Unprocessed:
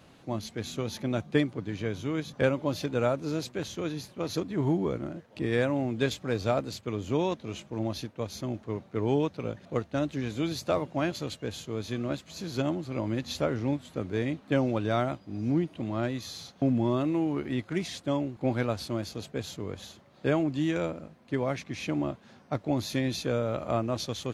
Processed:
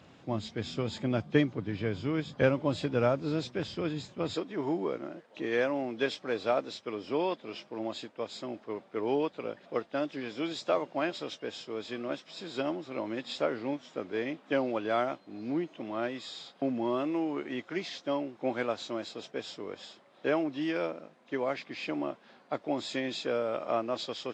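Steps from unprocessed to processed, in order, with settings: nonlinear frequency compression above 3000 Hz 1.5:1; HPF 63 Hz 12 dB/oct, from 4.34 s 340 Hz

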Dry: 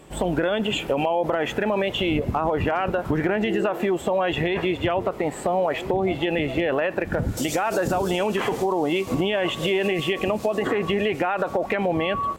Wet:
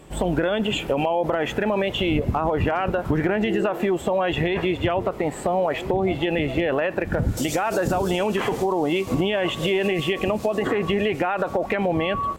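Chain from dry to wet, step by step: low shelf 140 Hz +5 dB

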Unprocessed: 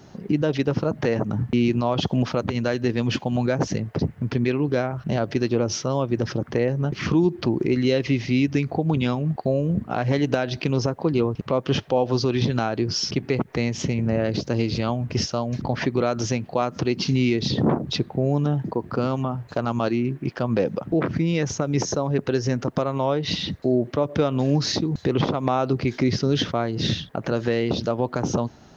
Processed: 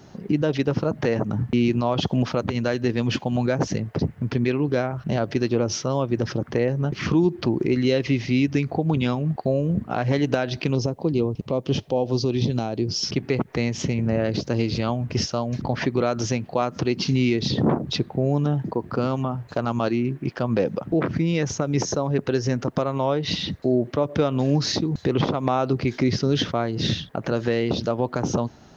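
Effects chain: 10.75–13.03 bell 1500 Hz -13 dB 1.3 oct

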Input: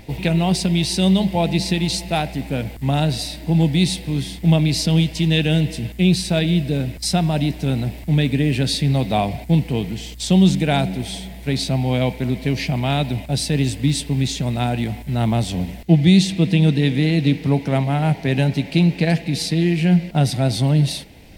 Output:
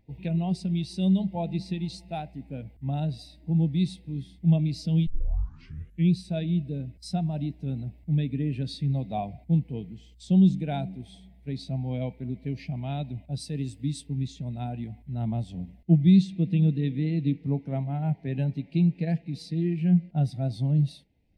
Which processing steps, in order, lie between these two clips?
5.07 tape start 1.04 s; 13.4–14.07 tone controls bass -2 dB, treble +4 dB; spectral expander 1.5:1; gain -6.5 dB

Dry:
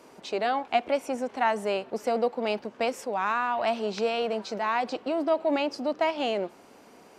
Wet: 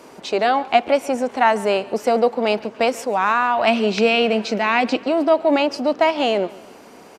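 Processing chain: 3.67–5.04 fifteen-band EQ 250 Hz +7 dB, 1000 Hz -4 dB, 2500 Hz +8 dB; feedback echo 0.142 s, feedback 49%, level -21.5 dB; gain +9 dB

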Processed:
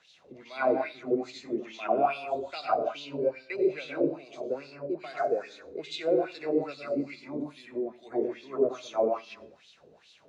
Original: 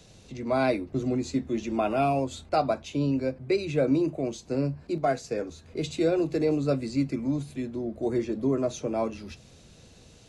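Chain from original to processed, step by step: plate-style reverb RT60 0.63 s, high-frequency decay 0.95×, pre-delay 80 ms, DRR 0.5 dB; wah 2.4 Hz 420–3800 Hz, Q 3.7; gain +5.5 dB

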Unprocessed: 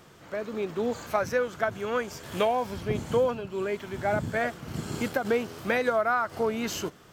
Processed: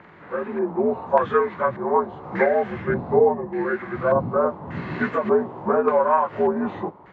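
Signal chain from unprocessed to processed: inharmonic rescaling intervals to 83%; LFO low-pass square 0.85 Hz 900–1800 Hz; gain +6.5 dB

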